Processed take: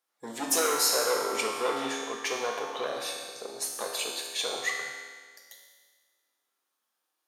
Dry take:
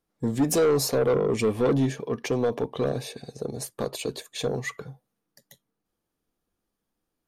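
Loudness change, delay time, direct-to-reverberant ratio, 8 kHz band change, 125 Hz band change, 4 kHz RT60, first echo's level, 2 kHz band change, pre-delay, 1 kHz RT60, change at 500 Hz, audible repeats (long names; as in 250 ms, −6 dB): −3.0 dB, no echo audible, −0.5 dB, +5.5 dB, −28.0 dB, 1.6 s, no echo audible, +4.5 dB, 4 ms, 1.6 s, −7.5 dB, no echo audible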